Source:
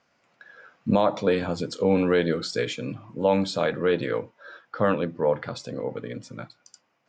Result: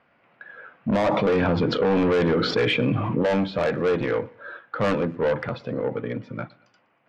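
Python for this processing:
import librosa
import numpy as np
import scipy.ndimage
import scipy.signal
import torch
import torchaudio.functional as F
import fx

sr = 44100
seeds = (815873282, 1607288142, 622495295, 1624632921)

y = scipy.signal.sosfilt(scipy.signal.butter(4, 2900.0, 'lowpass', fs=sr, output='sos'), x)
y = 10.0 ** (-23.5 / 20.0) * np.tanh(y / 10.0 ** (-23.5 / 20.0))
y = fx.echo_feedback(y, sr, ms=119, feedback_pct=40, wet_db=-24.0)
y = fx.env_flatten(y, sr, amount_pct=70, at=(1.07, 3.23))
y = y * 10.0 ** (6.0 / 20.0)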